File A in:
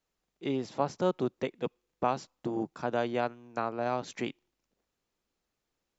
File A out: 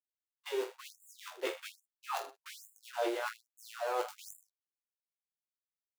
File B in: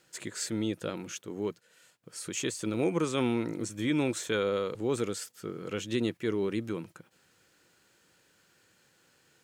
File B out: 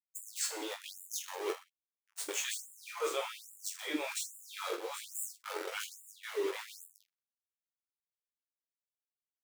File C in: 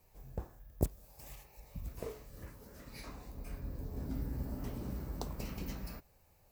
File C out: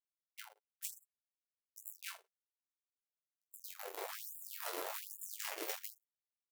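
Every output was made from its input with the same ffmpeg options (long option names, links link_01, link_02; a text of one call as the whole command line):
ffmpeg -i in.wav -filter_complex "[0:a]bandreject=frequency=4800:width=14,aeval=exprs='val(0)*gte(abs(val(0)),0.0178)':channel_layout=same,areverse,acompressor=threshold=-39dB:ratio=5,areverse,flanger=delay=8.6:depth=2.8:regen=19:speed=0.33:shape=triangular,asplit=2[link_01][link_02];[link_02]aecho=0:1:20|46|79.8|123.7|180.9:0.631|0.398|0.251|0.158|0.1[link_03];[link_01][link_03]amix=inputs=2:normalize=0,agate=range=-33dB:threshold=-50dB:ratio=3:detection=peak,afftfilt=real='re*gte(b*sr/1024,300*pow(7100/300,0.5+0.5*sin(2*PI*1.2*pts/sr)))':imag='im*gte(b*sr/1024,300*pow(7100/300,0.5+0.5*sin(2*PI*1.2*pts/sr)))':win_size=1024:overlap=0.75,volume=11dB" out.wav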